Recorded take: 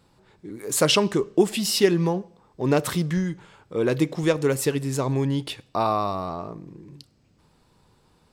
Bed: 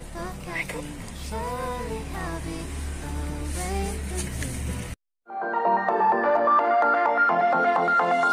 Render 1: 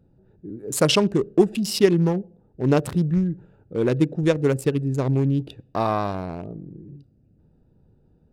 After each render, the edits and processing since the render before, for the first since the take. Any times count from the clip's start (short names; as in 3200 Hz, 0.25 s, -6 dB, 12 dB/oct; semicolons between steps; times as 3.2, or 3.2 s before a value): Wiener smoothing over 41 samples; low shelf 350 Hz +5 dB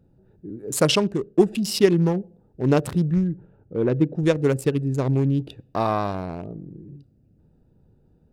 0.84–1.38 fade out, to -8.5 dB; 3.32–4.15 LPF 1300 Hz 6 dB/oct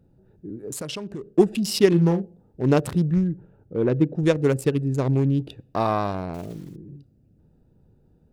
0.62–1.3 compressor 8:1, threshold -29 dBFS; 1.88–2.63 doubler 41 ms -9 dB; 6.34–6.76 block floating point 5-bit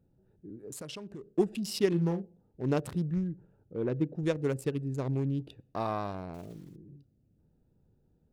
gain -10 dB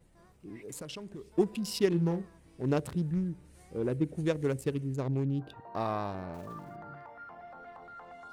add bed -27.5 dB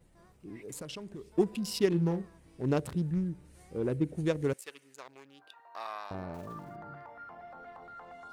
4.53–6.11 HPF 1200 Hz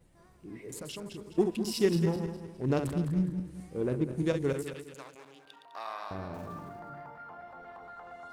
regenerating reverse delay 0.103 s, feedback 59%, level -7 dB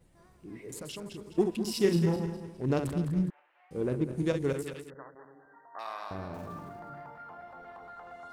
1.81–2.49 doubler 35 ms -7.5 dB; 3.3–3.71 elliptic band-pass 730–2800 Hz, stop band 60 dB; 4.9–5.79 brick-wall FIR low-pass 2000 Hz